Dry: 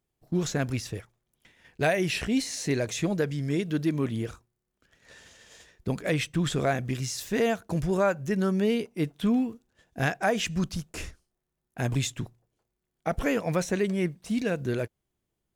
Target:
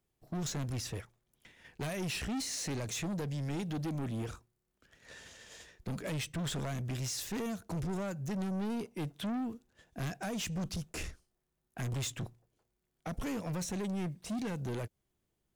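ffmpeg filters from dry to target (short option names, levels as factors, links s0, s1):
-filter_complex "[0:a]acrossover=split=280|3700[s0][s1][s2];[s1]acompressor=threshold=0.0178:ratio=6[s3];[s0][s3][s2]amix=inputs=3:normalize=0,asoftclip=type=tanh:threshold=0.0224"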